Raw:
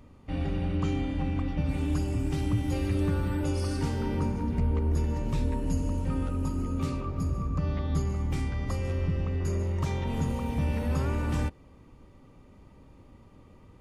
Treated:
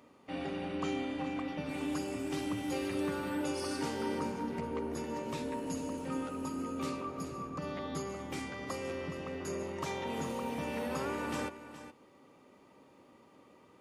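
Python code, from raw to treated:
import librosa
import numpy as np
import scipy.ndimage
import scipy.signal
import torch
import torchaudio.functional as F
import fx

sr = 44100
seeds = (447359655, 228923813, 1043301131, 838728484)

y = scipy.signal.sosfilt(scipy.signal.butter(2, 320.0, 'highpass', fs=sr, output='sos'), x)
y = y + 10.0 ** (-13.0 / 20.0) * np.pad(y, (int(419 * sr / 1000.0), 0))[:len(y)]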